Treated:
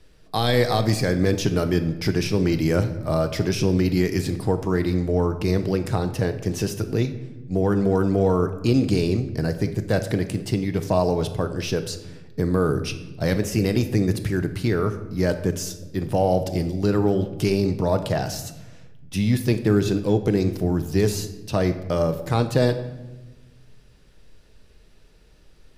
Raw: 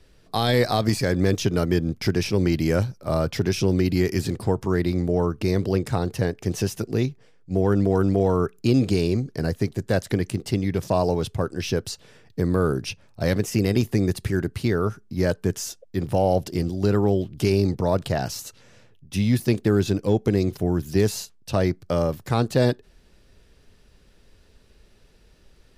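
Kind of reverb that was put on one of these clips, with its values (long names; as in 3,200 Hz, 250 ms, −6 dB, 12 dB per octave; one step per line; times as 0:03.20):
rectangular room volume 550 cubic metres, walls mixed, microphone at 0.53 metres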